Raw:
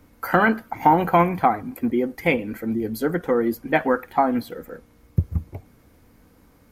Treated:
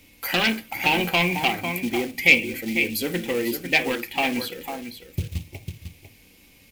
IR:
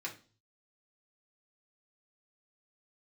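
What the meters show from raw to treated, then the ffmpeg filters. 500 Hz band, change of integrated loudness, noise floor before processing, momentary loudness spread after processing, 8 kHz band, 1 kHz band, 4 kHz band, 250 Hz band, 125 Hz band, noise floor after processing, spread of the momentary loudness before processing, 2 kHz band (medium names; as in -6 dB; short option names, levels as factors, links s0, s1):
-5.5 dB, -0.5 dB, -56 dBFS, 16 LU, +12.0 dB, -8.0 dB, +16.0 dB, -4.0 dB, -4.5 dB, -54 dBFS, 10 LU, +5.5 dB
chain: -filter_complex "[0:a]asplit=2[s0][s1];[1:a]atrim=start_sample=2205,atrim=end_sample=3969[s2];[s1][s2]afir=irnorm=-1:irlink=0,volume=0.562[s3];[s0][s3]amix=inputs=2:normalize=0,acrusher=bits=6:mode=log:mix=0:aa=0.000001,asplit=2[s4][s5];[s5]aecho=0:1:499:0.316[s6];[s4][s6]amix=inputs=2:normalize=0,asoftclip=type=tanh:threshold=0.237,highshelf=f=1900:t=q:w=3:g=10.5,volume=0.596"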